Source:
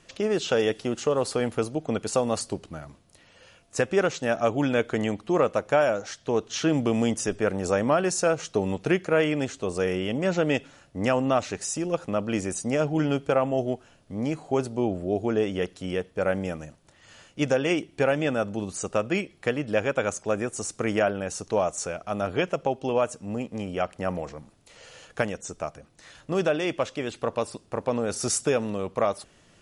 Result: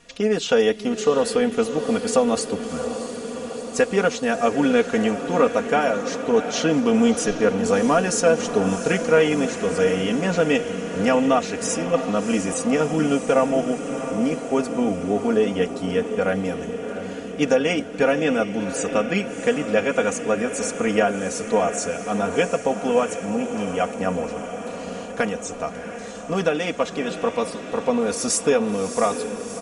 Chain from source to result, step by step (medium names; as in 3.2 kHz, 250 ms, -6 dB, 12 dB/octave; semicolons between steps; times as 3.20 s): comb 4.2 ms, depth 82%; on a send: echo that smears into a reverb 689 ms, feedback 71%, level -10 dB; on the sum: trim +2 dB